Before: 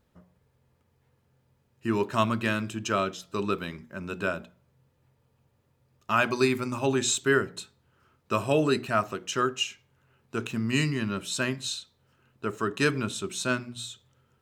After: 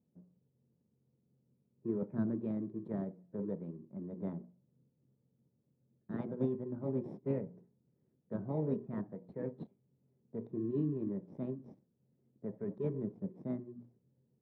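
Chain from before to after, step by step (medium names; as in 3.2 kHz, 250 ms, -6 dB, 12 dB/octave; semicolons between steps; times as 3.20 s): local Wiener filter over 15 samples; formant shift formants +6 st; in parallel at -7 dB: sample-and-hold 31×; on the sum: ladder band-pass 210 Hz, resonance 40%; trim +2.5 dB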